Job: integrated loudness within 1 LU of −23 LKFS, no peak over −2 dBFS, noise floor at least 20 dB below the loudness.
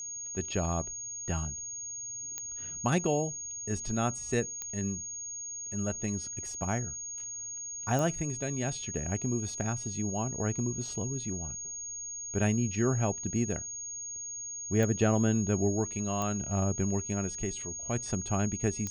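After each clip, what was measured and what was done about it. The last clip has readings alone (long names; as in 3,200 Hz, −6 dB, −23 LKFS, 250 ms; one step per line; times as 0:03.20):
number of clicks 6; interfering tone 6,600 Hz; level of the tone −37 dBFS; integrated loudness −32.0 LKFS; sample peak −12.5 dBFS; target loudness −23.0 LKFS
→ click removal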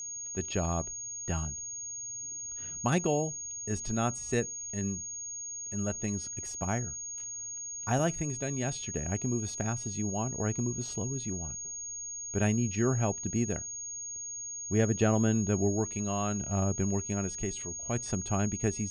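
number of clicks 0; interfering tone 6,600 Hz; level of the tone −37 dBFS
→ notch filter 6,600 Hz, Q 30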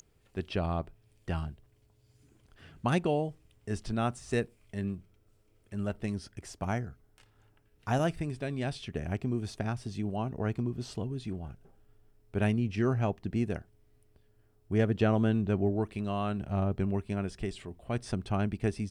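interfering tone none found; integrated loudness −33.0 LKFS; sample peak −13.0 dBFS; target loudness −23.0 LKFS
→ level +10 dB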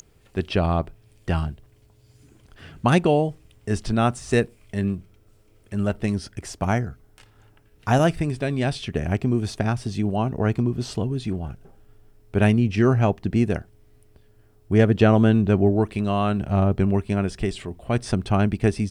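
integrated loudness −23.0 LKFS; sample peak −3.0 dBFS; background noise floor −57 dBFS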